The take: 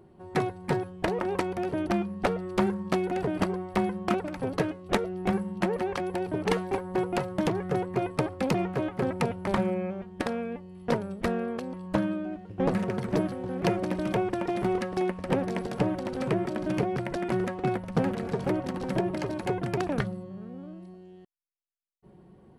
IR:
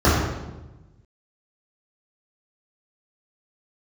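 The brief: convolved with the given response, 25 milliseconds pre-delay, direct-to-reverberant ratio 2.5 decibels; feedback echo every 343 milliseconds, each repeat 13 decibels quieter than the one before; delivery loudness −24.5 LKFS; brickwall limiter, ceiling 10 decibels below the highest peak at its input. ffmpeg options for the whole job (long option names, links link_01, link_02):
-filter_complex "[0:a]alimiter=limit=-19dB:level=0:latency=1,aecho=1:1:343|686|1029:0.224|0.0493|0.0108,asplit=2[link_01][link_02];[1:a]atrim=start_sample=2205,adelay=25[link_03];[link_02][link_03]afir=irnorm=-1:irlink=0,volume=-26dB[link_04];[link_01][link_04]amix=inputs=2:normalize=0"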